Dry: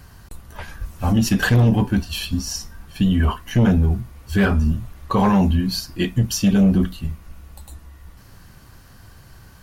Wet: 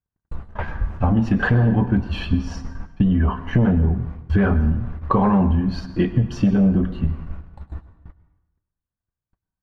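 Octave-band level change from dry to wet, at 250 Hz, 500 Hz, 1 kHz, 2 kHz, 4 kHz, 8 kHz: -0.5 dB, 0.0 dB, 0.0 dB, -2.0 dB, -10.5 dB, under -15 dB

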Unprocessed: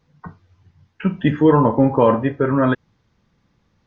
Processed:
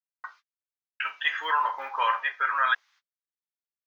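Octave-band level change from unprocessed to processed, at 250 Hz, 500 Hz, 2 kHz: under -40 dB, -25.5 dB, +4.5 dB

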